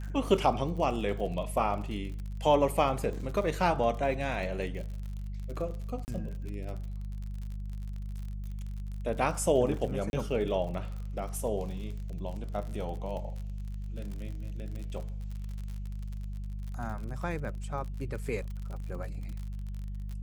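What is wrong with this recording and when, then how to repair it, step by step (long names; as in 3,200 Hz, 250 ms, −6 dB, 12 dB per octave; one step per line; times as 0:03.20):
surface crackle 53 per second −38 dBFS
mains hum 50 Hz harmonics 4 −37 dBFS
0:06.05–0:06.08: drop-out 29 ms
0:10.10–0:10.13: drop-out 31 ms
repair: click removal
hum removal 50 Hz, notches 4
repair the gap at 0:06.05, 29 ms
repair the gap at 0:10.10, 31 ms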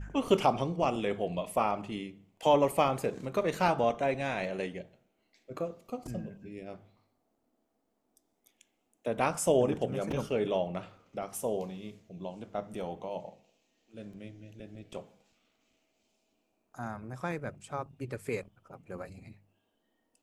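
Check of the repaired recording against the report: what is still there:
none of them is left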